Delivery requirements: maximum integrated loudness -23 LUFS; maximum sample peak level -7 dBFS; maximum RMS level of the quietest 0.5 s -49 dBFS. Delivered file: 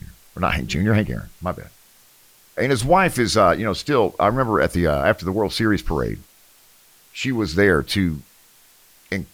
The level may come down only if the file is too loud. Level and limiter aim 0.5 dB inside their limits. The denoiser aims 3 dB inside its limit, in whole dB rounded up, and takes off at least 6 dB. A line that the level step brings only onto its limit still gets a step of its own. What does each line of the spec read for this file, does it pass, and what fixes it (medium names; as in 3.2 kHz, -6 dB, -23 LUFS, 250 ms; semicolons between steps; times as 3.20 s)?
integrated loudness -20.0 LUFS: fail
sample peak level -4.5 dBFS: fail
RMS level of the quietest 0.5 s -53 dBFS: pass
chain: trim -3.5 dB